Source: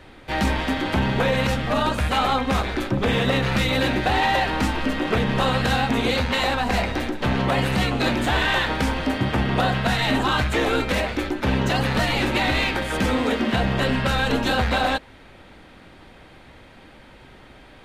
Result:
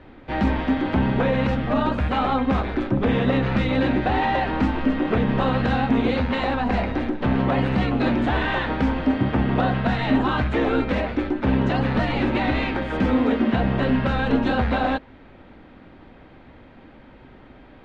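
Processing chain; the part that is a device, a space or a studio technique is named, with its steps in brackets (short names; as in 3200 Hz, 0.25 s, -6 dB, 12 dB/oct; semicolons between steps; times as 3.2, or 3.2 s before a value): phone in a pocket (LPF 3900 Hz 12 dB/oct; bell 260 Hz +5 dB 0.55 oct; high shelf 2200 Hz -9.5 dB)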